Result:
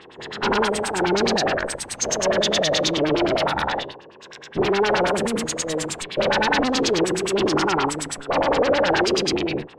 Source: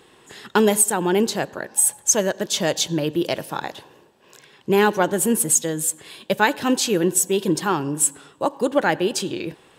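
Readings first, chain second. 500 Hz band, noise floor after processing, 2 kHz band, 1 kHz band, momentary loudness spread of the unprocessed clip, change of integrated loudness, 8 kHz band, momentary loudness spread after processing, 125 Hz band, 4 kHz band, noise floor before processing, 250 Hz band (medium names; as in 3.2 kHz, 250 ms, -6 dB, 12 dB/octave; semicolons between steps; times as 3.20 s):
+1.5 dB, -45 dBFS, +2.5 dB, +2.0 dB, 10 LU, -1.0 dB, -8.0 dB, 7 LU, -1.5 dB, +4.5 dB, -53 dBFS, -1.0 dB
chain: every event in the spectrogram widened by 240 ms; valve stage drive 23 dB, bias 0.65; LFO low-pass sine 9.5 Hz 450–5500 Hz; trim +3 dB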